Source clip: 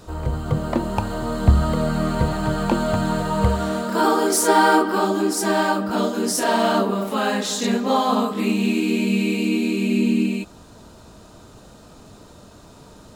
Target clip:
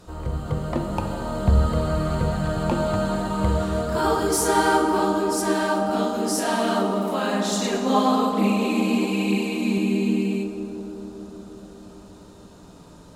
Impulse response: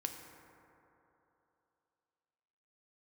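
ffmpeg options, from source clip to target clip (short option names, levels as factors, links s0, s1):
-filter_complex "[0:a]asettb=1/sr,asplit=3[s0][s1][s2];[s0]atrim=end=7.514[s3];[s1]atrim=start=7.51:end=9.78,asetpts=PTS-STARTPTS,afade=t=in:d=0.004:c=qsin,afade=t=out:st=2.266:d=0.004:c=qsin,aphaser=in_gain=1:out_gain=1:delay=5:decay=0.57:speed=1.1:type=triangular[s4];[s2]atrim=start=9.776[s5];[s3][s4]acrossfade=d=0.004:c1=hsin:c2=qsin[s6];[s6][s5]acrossfade=d=0.004:c1=qsin:c2=hsin[s7];[1:a]atrim=start_sample=2205,asetrate=25578,aresample=44100[s8];[s7][s8]afir=irnorm=-1:irlink=0,volume=0.531"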